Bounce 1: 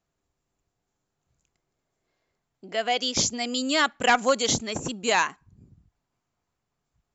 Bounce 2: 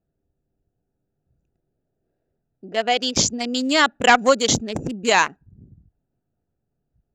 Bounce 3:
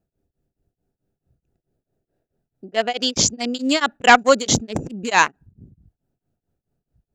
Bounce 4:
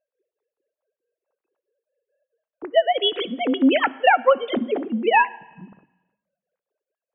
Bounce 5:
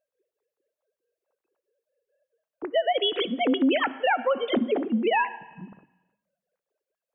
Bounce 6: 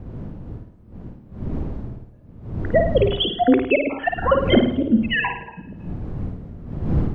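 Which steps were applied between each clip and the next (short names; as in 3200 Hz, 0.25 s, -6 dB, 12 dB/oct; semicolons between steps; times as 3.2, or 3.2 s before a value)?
Wiener smoothing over 41 samples; gain +6.5 dB
beating tremolo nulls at 4.6 Hz; gain +3.5 dB
sine-wave speech; compressor 6:1, threshold -19 dBFS, peak gain reduction 13 dB; on a send at -18.5 dB: reverb RT60 1.0 s, pre-delay 3 ms; on the sum: gain +6 dB
limiter -15 dBFS, peak gain reduction 11 dB
random spectral dropouts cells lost 62%; wind noise 160 Hz -38 dBFS; flutter echo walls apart 9.3 m, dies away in 0.55 s; gain +9 dB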